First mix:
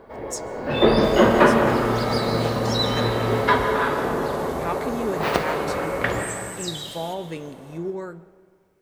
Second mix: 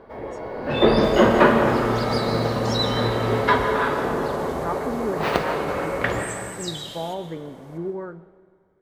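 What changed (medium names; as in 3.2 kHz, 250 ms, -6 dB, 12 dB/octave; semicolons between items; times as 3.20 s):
speech: add Savitzky-Golay filter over 41 samples; master: add treble shelf 9.5 kHz -5.5 dB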